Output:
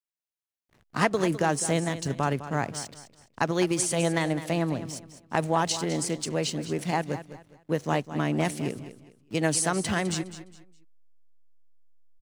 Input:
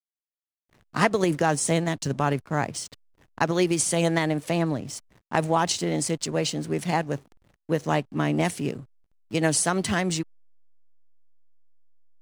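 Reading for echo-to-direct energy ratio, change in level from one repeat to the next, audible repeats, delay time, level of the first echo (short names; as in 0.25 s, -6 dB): -12.5 dB, -11.0 dB, 3, 0.206 s, -13.0 dB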